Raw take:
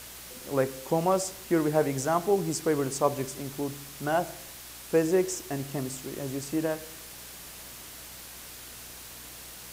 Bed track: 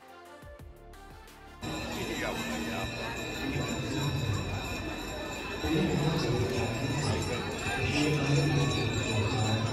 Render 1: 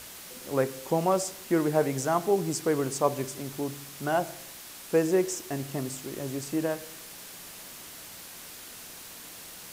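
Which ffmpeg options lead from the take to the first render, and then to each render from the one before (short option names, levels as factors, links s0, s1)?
-af "bandreject=f=60:t=h:w=4,bandreject=f=120:t=h:w=4"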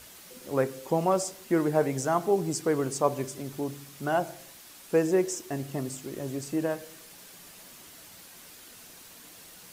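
-af "afftdn=nr=6:nf=-45"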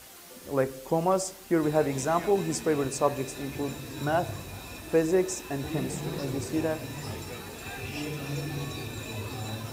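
-filter_complex "[1:a]volume=0.447[s0];[0:a][s0]amix=inputs=2:normalize=0"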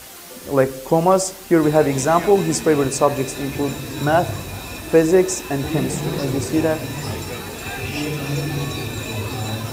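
-af "volume=3.16,alimiter=limit=0.794:level=0:latency=1"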